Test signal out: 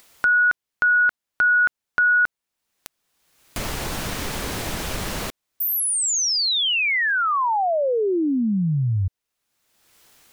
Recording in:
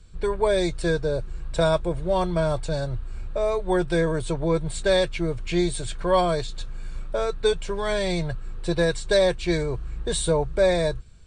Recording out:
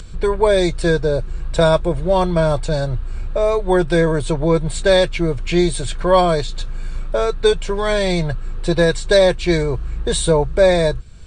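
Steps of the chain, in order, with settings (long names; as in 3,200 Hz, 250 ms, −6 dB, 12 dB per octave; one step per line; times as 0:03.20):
high-shelf EQ 8,400 Hz −3.5 dB
in parallel at −2 dB: upward compression, threshold −25 dBFS
on the sum: level +2 dB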